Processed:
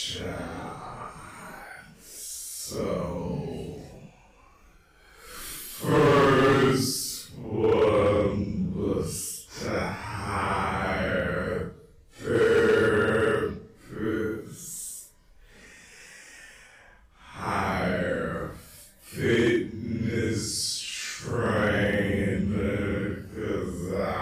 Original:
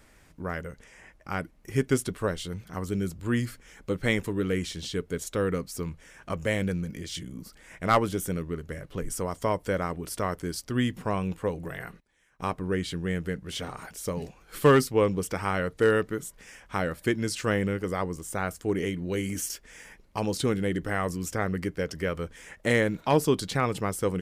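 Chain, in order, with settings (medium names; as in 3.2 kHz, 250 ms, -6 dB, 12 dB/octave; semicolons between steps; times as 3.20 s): dynamic bell 5 kHz, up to +4 dB, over -48 dBFS, Q 1.2; Paulstretch 5.5×, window 0.05 s, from 13.57 s; hard clipper -16 dBFS, distortion -12 dB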